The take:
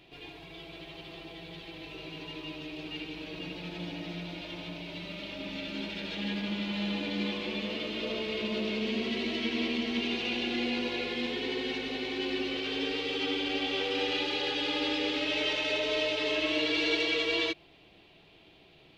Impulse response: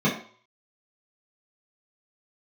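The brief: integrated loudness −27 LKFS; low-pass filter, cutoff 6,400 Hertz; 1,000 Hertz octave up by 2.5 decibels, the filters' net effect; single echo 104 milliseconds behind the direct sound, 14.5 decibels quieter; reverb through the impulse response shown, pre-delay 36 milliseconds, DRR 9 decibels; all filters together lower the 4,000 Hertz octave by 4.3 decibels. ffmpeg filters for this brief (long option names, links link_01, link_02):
-filter_complex "[0:a]lowpass=6400,equalizer=frequency=1000:width_type=o:gain=3.5,equalizer=frequency=4000:width_type=o:gain=-6,aecho=1:1:104:0.188,asplit=2[link_01][link_02];[1:a]atrim=start_sample=2205,adelay=36[link_03];[link_02][link_03]afir=irnorm=-1:irlink=0,volume=-24dB[link_04];[link_01][link_04]amix=inputs=2:normalize=0,volume=2.5dB"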